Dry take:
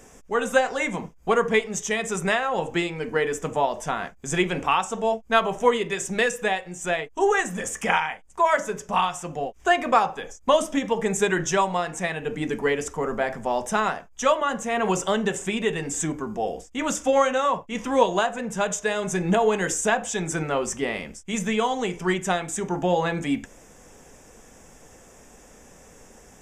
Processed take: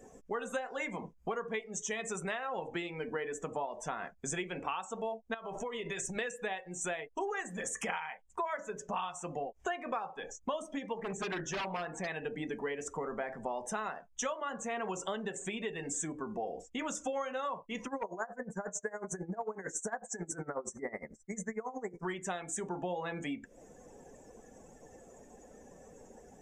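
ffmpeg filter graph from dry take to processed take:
ffmpeg -i in.wav -filter_complex "[0:a]asettb=1/sr,asplit=3[link_01][link_02][link_03];[link_01]atrim=end=5.344[link_04];[link_02]atrim=start=5.34:end=6.17,asetpts=PTS-STARTPTS,afade=type=in:duration=0.004:curve=qsin,afade=type=out:start_time=0.826:duration=0.004:curve=qsin,asubboost=boost=10:cutoff=130,acompressor=threshold=-28dB:ratio=20:attack=3.2:release=140:knee=1:detection=peak[link_05];[link_03]atrim=start=6.166[link_06];[link_04][link_05]acrossfade=duration=0.004:curve1=hsin:curve2=qsin[link_07];[link_07][link_06]acrossfade=duration=0.004:curve1=qsin:curve2=hsin,asettb=1/sr,asplit=3[link_08][link_09][link_10];[link_08]atrim=end=10.984[link_11];[link_09]atrim=start=10.98:end=12.08,asetpts=PTS-STARTPTS,afade=type=in:duration=0.004:curve=qsin,afade=type=out:start_time=1.096:duration=0.004:curve=qsin,acrossover=split=8900[link_12][link_13];[link_13]acompressor=threshold=-42dB:ratio=4:attack=1:release=60[link_14];[link_12][link_14]amix=inputs=2:normalize=0,highshelf=frequency=3900:gain=-9.5,aeval=exprs='0.0891*(abs(mod(val(0)/0.0891+3,4)-2)-1)':channel_layout=same[link_15];[link_10]atrim=start=12.076[link_16];[link_11][link_15]acrossfade=duration=0.004:curve1=hsin:curve2=qsin[link_17];[link_17][link_16]acrossfade=duration=0.004:curve1=qsin:curve2=hsin,asettb=1/sr,asplit=3[link_18][link_19][link_20];[link_18]atrim=end=17.864[link_21];[link_19]atrim=start=17.86:end=22.05,asetpts=PTS-STARTPTS,afade=type=in:duration=0.004:curve=qsin,afade=type=out:start_time=4.186:duration=0.004:curve=qsin,asuperstop=centerf=3300:order=8:qfactor=1.1,asoftclip=type=hard:threshold=-13.5dB,aeval=exprs='val(0)*pow(10,-19*(0.5-0.5*cos(2*PI*11*n/s))/20)':channel_layout=same[link_22];[link_20]atrim=start=22.046[link_23];[link_21][link_22]acrossfade=duration=0.004:curve1=hsin:curve2=qsin[link_24];[link_24][link_23]acrossfade=duration=0.004:curve1=qsin:curve2=hsin,acompressor=threshold=-34dB:ratio=6,afftdn=noise_reduction=17:noise_floor=-49,lowshelf=frequency=130:gain=-11" out.wav

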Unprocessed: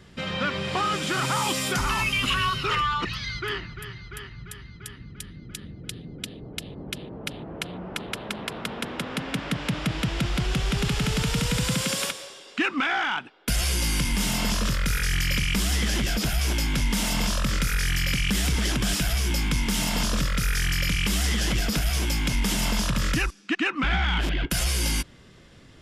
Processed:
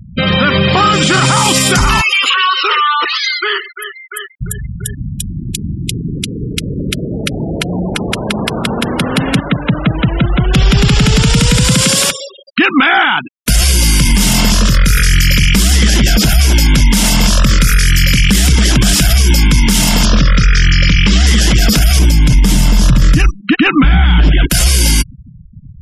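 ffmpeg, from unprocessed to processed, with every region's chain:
ffmpeg -i in.wav -filter_complex "[0:a]asettb=1/sr,asplit=3[link_01][link_02][link_03];[link_01]atrim=end=2.014[link_04];[link_02]atrim=start=2.01:end=4.41,asetpts=PTS-STARTPTS,afade=type=in:duration=0.004:curve=qsin,afade=type=out:start_time=2.396:duration=0.004:curve=qsin,highpass=frequency=430:width=0.5412,highpass=frequency=430:width=1.3066,acompressor=threshold=-28dB:ratio=2.5:attack=3.2:release=140:knee=1:detection=peak,aecho=1:1:129:0.2,atrim=end_sample=105840[link_05];[link_03]atrim=start=4.406[link_06];[link_04][link_05]acrossfade=duration=0.004:curve1=hsin:curve2=qsin[link_07];[link_07][link_06]acrossfade=duration=0.004:curve1=qsin:curve2=hsin,asettb=1/sr,asplit=3[link_08][link_09][link_10];[link_08]atrim=end=9.404[link_11];[link_09]atrim=start=9.4:end=10.54,asetpts=PTS-STARTPTS,afade=type=in:duration=0.004:curve=qsin,afade=type=out:start_time=1.136:duration=0.004:curve=qsin,lowpass=frequency=1500:poles=1,lowshelf=frequency=370:gain=-7.5[link_12];[link_10]atrim=start=10.536[link_13];[link_11][link_12]acrossfade=duration=0.004:curve1=hsin:curve2=qsin[link_14];[link_14][link_13]acrossfade=duration=0.004:curve1=qsin:curve2=hsin,asettb=1/sr,asplit=3[link_15][link_16][link_17];[link_15]atrim=end=20.054[link_18];[link_16]atrim=start=20.05:end=21.27,asetpts=PTS-STARTPTS,afade=type=in:duration=0.004:curve=qsin,afade=type=out:start_time=1.216:duration=0.004:curve=qsin,lowpass=5400,asoftclip=type=hard:threshold=-18dB[link_19];[link_17]atrim=start=21.266[link_20];[link_18][link_19]acrossfade=duration=0.004:curve1=hsin:curve2=qsin[link_21];[link_21][link_20]acrossfade=duration=0.004:curve1=qsin:curve2=hsin,asettb=1/sr,asplit=3[link_22][link_23][link_24];[link_22]atrim=end=21.994[link_25];[link_23]atrim=start=21.99:end=24.32,asetpts=PTS-STARTPTS,afade=type=in:duration=0.004:curve=qsin,afade=type=out:start_time=2.326:duration=0.004:curve=qsin,lowshelf=frequency=300:gain=10,aecho=1:1:6.7:0.35,atrim=end_sample=102753[link_26];[link_24]atrim=start=24.316[link_27];[link_25][link_26]acrossfade=duration=0.004:curve1=hsin:curve2=qsin[link_28];[link_28][link_27]acrossfade=duration=0.004:curve1=qsin:curve2=hsin,bass=frequency=250:gain=4,treble=frequency=4000:gain=4,afftfilt=real='re*gte(hypot(re,im),0.0251)':imag='im*gte(hypot(re,im),0.0251)':win_size=1024:overlap=0.75,alimiter=level_in=18.5dB:limit=-1dB:release=50:level=0:latency=1,volume=-1dB" out.wav

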